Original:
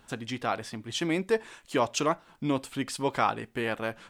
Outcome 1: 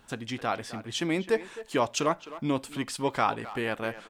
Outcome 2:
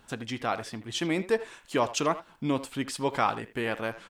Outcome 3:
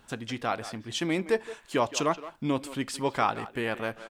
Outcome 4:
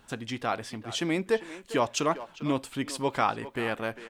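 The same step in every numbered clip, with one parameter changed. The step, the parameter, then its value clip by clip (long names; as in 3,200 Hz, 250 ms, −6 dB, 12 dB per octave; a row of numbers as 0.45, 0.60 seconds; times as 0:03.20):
far-end echo of a speakerphone, delay time: 260, 80, 170, 400 milliseconds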